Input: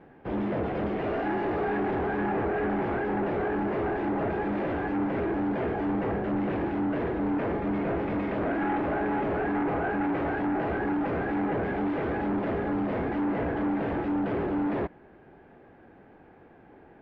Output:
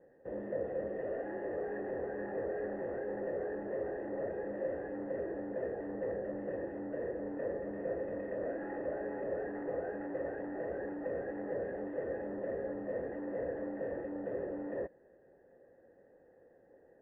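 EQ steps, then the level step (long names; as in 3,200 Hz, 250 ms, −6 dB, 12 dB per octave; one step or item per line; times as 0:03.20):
formant resonators in series e
Butterworth band-reject 2,300 Hz, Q 3
high-frequency loss of the air 140 metres
+2.5 dB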